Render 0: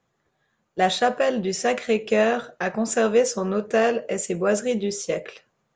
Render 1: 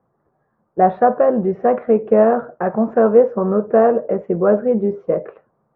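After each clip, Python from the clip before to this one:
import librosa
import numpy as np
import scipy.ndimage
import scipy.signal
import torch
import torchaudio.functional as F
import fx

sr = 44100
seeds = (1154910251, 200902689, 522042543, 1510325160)

y = scipy.signal.sosfilt(scipy.signal.butter(4, 1200.0, 'lowpass', fs=sr, output='sos'), x)
y = fx.low_shelf(y, sr, hz=63.0, db=-6.5)
y = y * librosa.db_to_amplitude(7.5)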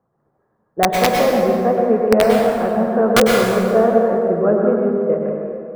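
y = (np.mod(10.0 ** (3.5 / 20.0) * x + 1.0, 2.0) - 1.0) / 10.0 ** (3.5 / 20.0)
y = fx.rev_plate(y, sr, seeds[0], rt60_s=2.3, hf_ratio=0.6, predelay_ms=90, drr_db=-0.5)
y = y * librosa.db_to_amplitude(-3.0)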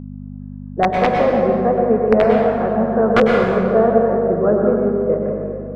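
y = scipy.signal.sosfilt(scipy.signal.butter(2, 2200.0, 'lowpass', fs=sr, output='sos'), x)
y = fx.dmg_buzz(y, sr, base_hz=50.0, harmonics=5, level_db=-32.0, tilt_db=0, odd_only=False)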